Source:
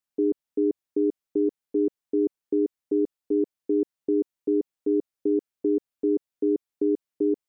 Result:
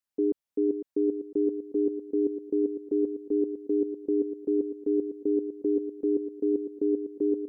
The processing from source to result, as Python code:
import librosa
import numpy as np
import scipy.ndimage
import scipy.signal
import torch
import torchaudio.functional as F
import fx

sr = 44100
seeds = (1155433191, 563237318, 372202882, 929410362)

y = fx.echo_feedback(x, sr, ms=504, feedback_pct=33, wet_db=-9.0)
y = F.gain(torch.from_numpy(y), -2.5).numpy()